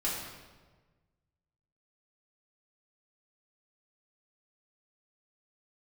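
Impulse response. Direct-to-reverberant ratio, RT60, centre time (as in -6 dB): -7.5 dB, 1.4 s, 71 ms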